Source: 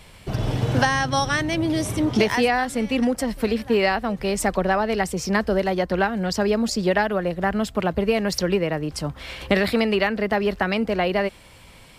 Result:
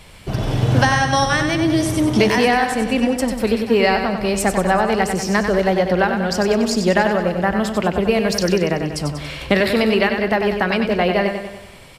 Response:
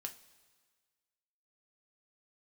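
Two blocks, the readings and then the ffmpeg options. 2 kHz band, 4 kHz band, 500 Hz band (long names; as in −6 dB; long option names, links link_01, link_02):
+4.5 dB, +4.5 dB, +4.5 dB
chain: -filter_complex "[0:a]aecho=1:1:95|190|285|380|475|570|665:0.447|0.246|0.135|0.0743|0.0409|0.0225|0.0124,asplit=2[link_01][link_02];[1:a]atrim=start_sample=2205,asetrate=24696,aresample=44100[link_03];[link_02][link_03]afir=irnorm=-1:irlink=0,volume=-11dB[link_04];[link_01][link_04]amix=inputs=2:normalize=0,volume=1.5dB"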